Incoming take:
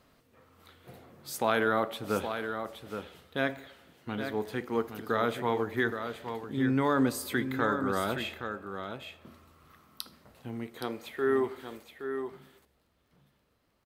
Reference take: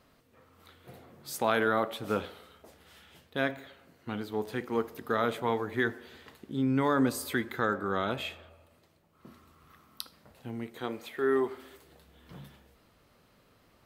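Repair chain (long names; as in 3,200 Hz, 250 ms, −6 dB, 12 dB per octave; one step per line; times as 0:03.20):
click removal
echo removal 820 ms −8 dB
level 0 dB, from 0:11.83 +10.5 dB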